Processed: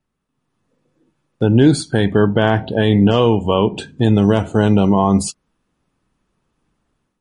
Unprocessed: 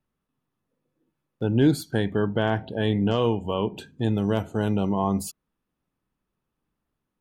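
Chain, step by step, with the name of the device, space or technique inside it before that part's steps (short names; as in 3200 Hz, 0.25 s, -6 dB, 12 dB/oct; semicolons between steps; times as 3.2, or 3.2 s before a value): low-bitrate web radio (AGC gain up to 8 dB; limiter -7 dBFS, peak gain reduction 4 dB; gain +5 dB; MP3 40 kbps 32000 Hz)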